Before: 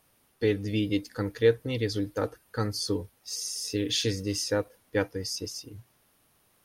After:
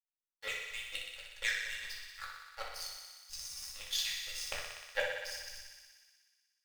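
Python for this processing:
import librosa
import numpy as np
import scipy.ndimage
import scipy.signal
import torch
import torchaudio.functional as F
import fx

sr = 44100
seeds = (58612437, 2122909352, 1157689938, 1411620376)

p1 = fx.filter_lfo_highpass(x, sr, shape='saw_down', hz=4.2, low_hz=540.0, high_hz=2700.0, q=5.4)
p2 = fx.schmitt(p1, sr, flips_db=-29.5)
p3 = p1 + (p2 * 10.0 ** (-3.0 / 20.0))
p4 = fx.power_curve(p3, sr, exponent=2.0)
p5 = fx.tone_stack(p4, sr, knobs='10-0-10')
p6 = p5 + fx.echo_thinned(p5, sr, ms=61, feedback_pct=80, hz=360.0, wet_db=-6, dry=0)
y = fx.room_shoebox(p6, sr, seeds[0], volume_m3=330.0, walls='furnished', distance_m=2.3)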